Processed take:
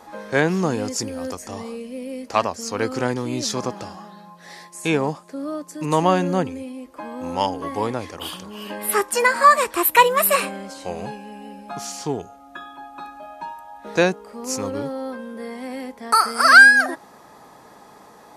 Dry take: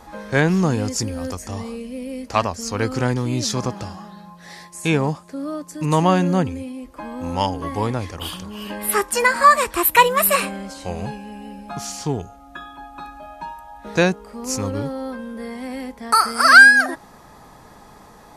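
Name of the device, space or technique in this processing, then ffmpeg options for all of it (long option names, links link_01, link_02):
filter by subtraction: -filter_complex "[0:a]asplit=2[link_01][link_02];[link_02]lowpass=400,volume=-1[link_03];[link_01][link_03]amix=inputs=2:normalize=0,volume=-1.5dB"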